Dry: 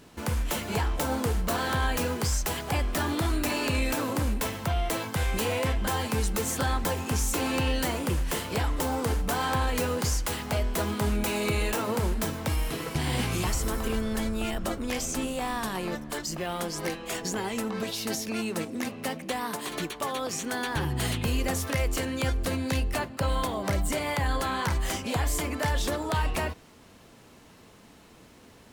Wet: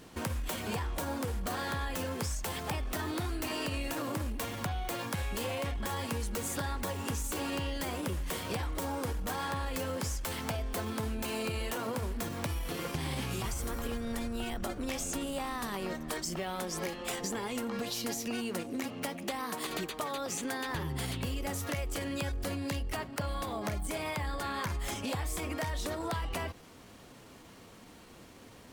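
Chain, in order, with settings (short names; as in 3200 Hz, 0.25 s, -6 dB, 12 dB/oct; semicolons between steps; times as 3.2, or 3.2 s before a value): compressor, threshold -32 dBFS, peak gain reduction 9.5 dB; pitch shift +1 st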